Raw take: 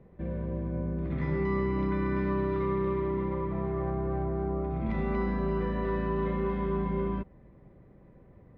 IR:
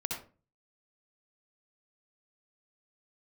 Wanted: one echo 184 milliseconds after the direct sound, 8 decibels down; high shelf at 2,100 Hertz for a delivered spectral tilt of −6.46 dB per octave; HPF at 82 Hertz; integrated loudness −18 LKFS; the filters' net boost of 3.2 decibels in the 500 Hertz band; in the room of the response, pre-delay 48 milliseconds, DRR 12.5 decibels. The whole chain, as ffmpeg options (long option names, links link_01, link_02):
-filter_complex "[0:a]highpass=82,equalizer=frequency=500:width_type=o:gain=5,highshelf=frequency=2100:gain=-6.5,aecho=1:1:184:0.398,asplit=2[link_01][link_02];[1:a]atrim=start_sample=2205,adelay=48[link_03];[link_02][link_03]afir=irnorm=-1:irlink=0,volume=-15.5dB[link_04];[link_01][link_04]amix=inputs=2:normalize=0,volume=11.5dB"